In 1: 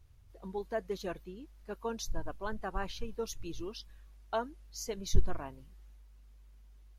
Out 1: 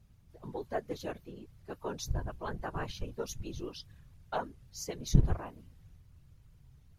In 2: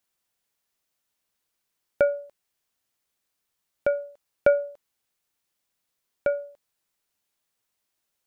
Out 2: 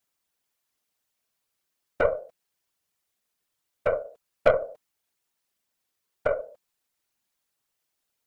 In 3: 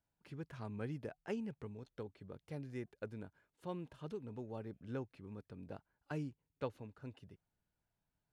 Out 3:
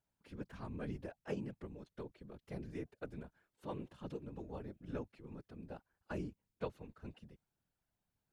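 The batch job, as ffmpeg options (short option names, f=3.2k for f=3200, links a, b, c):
-af "afftfilt=real='hypot(re,im)*cos(2*PI*random(0))':imag='hypot(re,im)*sin(2*PI*random(1))':win_size=512:overlap=0.75,aeval=exprs='0.237*(cos(1*acos(clip(val(0)/0.237,-1,1)))-cos(1*PI/2))+0.0299*(cos(4*acos(clip(val(0)/0.237,-1,1)))-cos(4*PI/2))':c=same,volume=5.5dB"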